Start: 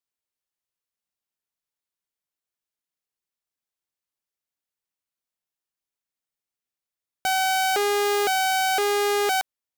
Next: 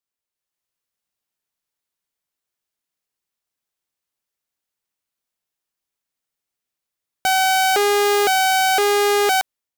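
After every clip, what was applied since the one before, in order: AGC gain up to 5.5 dB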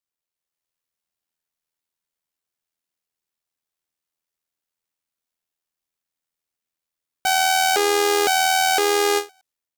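AM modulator 82 Hz, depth 35%; dynamic EQ 6400 Hz, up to +4 dB, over -33 dBFS, Q 0.71; ending taper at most 270 dB/s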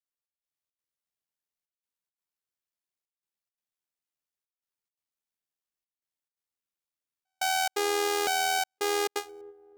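dark delay 0.316 s, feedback 31%, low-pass 400 Hz, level -13 dB; step gate "xxx..xxx.xxxxxxx" 172 bpm -60 dB; gain -8.5 dB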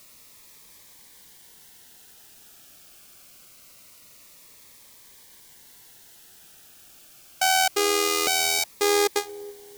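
in parallel at -8 dB: requantised 8-bit, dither triangular; on the sum: cascading phaser falling 0.24 Hz; gain +5.5 dB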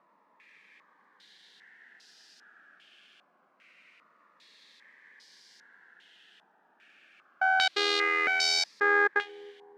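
brick-wall FIR high-pass 160 Hz; bell 1700 Hz +11 dB 0.46 oct; stepped low-pass 2.5 Hz 950–4900 Hz; gain -8.5 dB

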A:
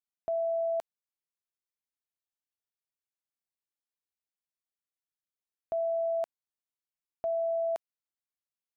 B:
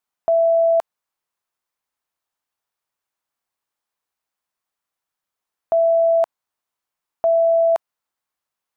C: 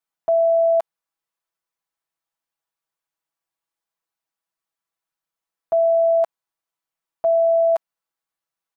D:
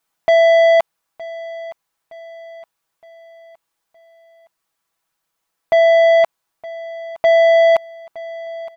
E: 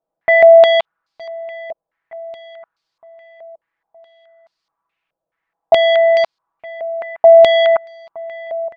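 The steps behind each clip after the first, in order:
bell 1000 Hz +9.5 dB 1.6 oct; gain +8 dB
comb 6.1 ms, depth 94%; gain -6.5 dB
in parallel at +0.5 dB: vocal rider 2 s; on the sum: soft clip -16.5 dBFS, distortion -12 dB; feedback echo 0.916 s, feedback 46%, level -18.5 dB; gain +7 dB
stepped low-pass 4.7 Hz 600–4600 Hz; gain -2 dB

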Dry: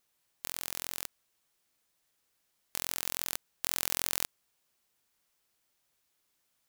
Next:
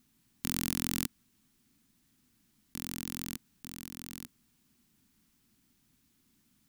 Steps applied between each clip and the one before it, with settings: resonant low shelf 360 Hz +13.5 dB, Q 3; negative-ratio compressor -38 dBFS, ratio -0.5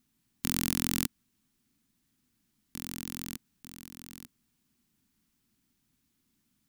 upward expander 1.5:1, over -50 dBFS; gain +4.5 dB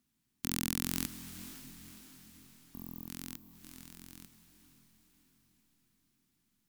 wow and flutter 39 cents; spectral delete 2.52–3.08, 1200–12000 Hz; diffused feedback echo 0.531 s, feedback 52%, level -12 dB; gain -4.5 dB

